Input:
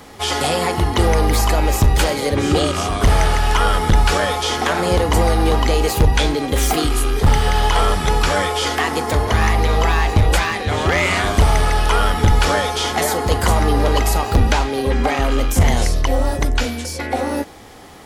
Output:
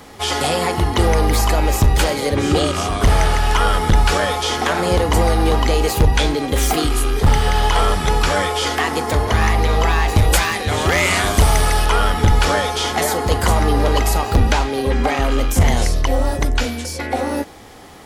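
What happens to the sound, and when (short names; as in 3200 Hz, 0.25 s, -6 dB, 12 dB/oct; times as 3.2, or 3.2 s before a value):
10.08–11.85 high shelf 6500 Hz +11 dB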